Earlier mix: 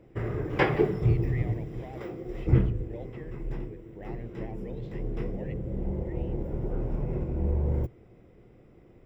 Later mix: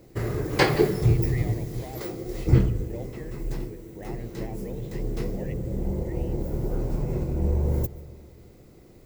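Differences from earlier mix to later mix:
background: remove polynomial smoothing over 25 samples; reverb: on, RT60 1.9 s

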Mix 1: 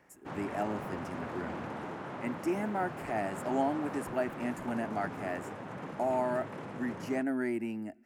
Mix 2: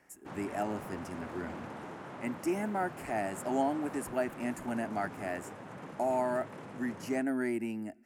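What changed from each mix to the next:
background -4.0 dB; master: add bell 9900 Hz +6 dB 1.6 oct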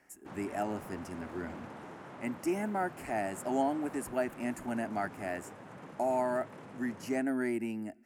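background -3.0 dB

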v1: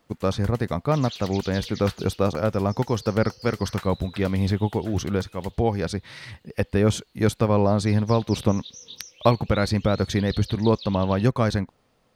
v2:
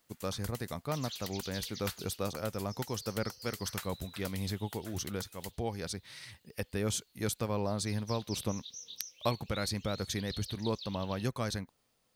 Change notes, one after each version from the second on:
first sound +5.0 dB; master: add pre-emphasis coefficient 0.8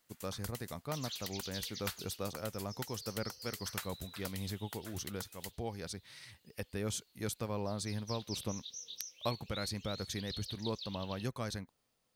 speech -4.5 dB

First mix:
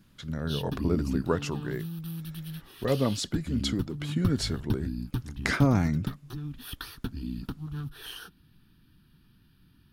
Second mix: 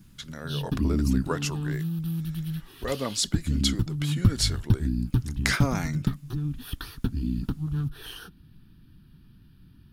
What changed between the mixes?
speech: add tilt +3 dB/oct; background: add low shelf 340 Hz +9 dB

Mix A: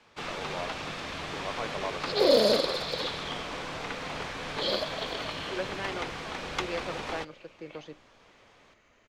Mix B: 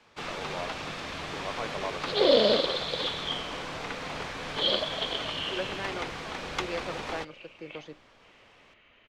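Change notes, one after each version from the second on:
second sound: add synth low-pass 3000 Hz, resonance Q 3.2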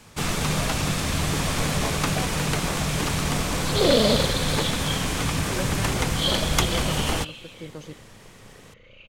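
first sound +7.0 dB; second sound: entry +1.60 s; master: remove three-band isolator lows -14 dB, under 300 Hz, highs -23 dB, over 4900 Hz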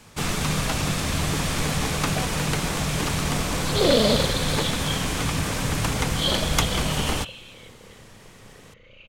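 speech: muted

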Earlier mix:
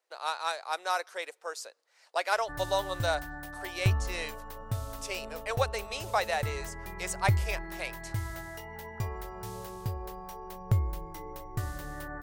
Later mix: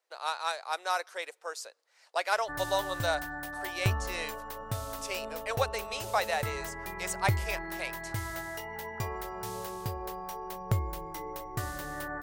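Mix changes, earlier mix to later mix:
background +4.5 dB; master: add low shelf 170 Hz -10.5 dB

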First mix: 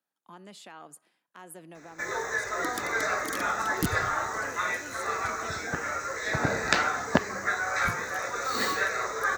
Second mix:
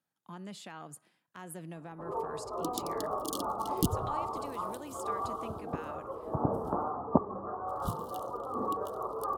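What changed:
speech: remove HPF 270 Hz 12 dB/oct; first sound: add rippled Chebyshev low-pass 1200 Hz, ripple 3 dB

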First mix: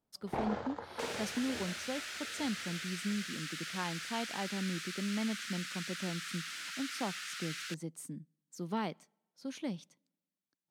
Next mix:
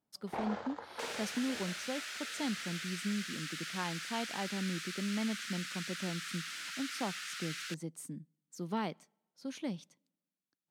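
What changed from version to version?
first sound: add low shelf 320 Hz -11.5 dB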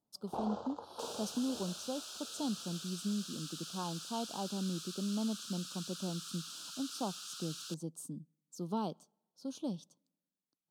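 master: add Butterworth band-stop 2000 Hz, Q 0.89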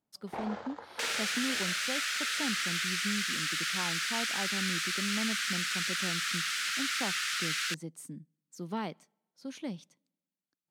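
second sound +10.0 dB; master: remove Butterworth band-stop 2000 Hz, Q 0.89

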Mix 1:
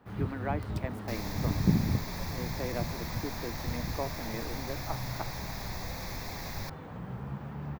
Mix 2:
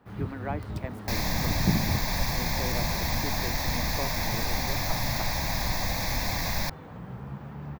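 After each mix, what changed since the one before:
second sound +11.0 dB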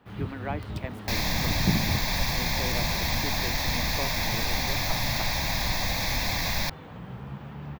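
master: add bell 3100 Hz +7.5 dB 1 oct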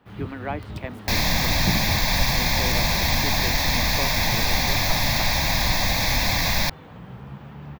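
speech +3.5 dB; second sound +6.0 dB

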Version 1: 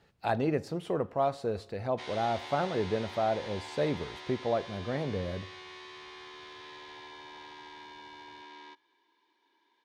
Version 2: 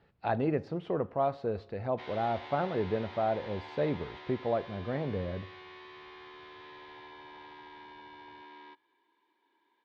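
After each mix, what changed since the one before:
master: add air absorption 260 m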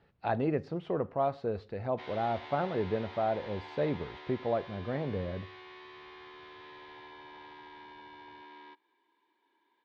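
reverb: off

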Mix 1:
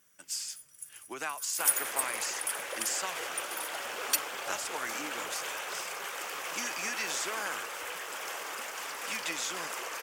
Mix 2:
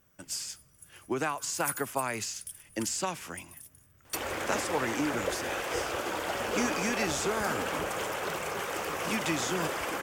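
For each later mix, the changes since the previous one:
first sound -8.5 dB; second sound: entry +2.55 s; master: remove HPF 1500 Hz 6 dB/oct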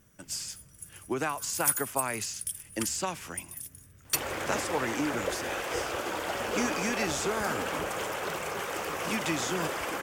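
first sound +8.0 dB

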